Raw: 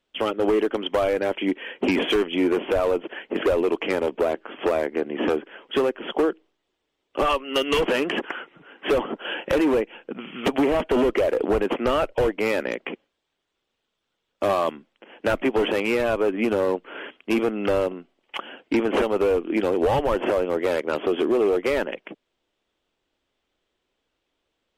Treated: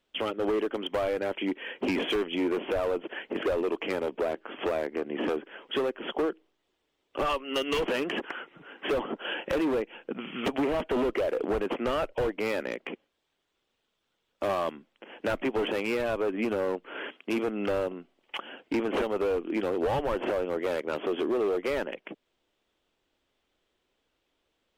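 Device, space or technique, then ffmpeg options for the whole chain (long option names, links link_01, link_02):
clipper into limiter: -filter_complex "[0:a]asettb=1/sr,asplit=3[link_01][link_02][link_03];[link_01]atrim=end=16.944[link_04];[link_02]atrim=start=16.94:end=17.48,asetpts=PTS-STARTPTS,afade=type=in:duration=0.004:curve=qsin,afade=type=out:start_time=0.536:duration=0.004:curve=qsin,highpass=140[link_05];[link_03]atrim=start=17.476[link_06];[link_04][link_05]acrossfade=duration=0.004:curve1=hsin:curve2=qsin[link_07];[link_07][link_06]acrossfade=duration=0.004:curve1=qsin:curve2=hsin,asoftclip=type=hard:threshold=-17dB,alimiter=limit=-23dB:level=0:latency=1:release=352"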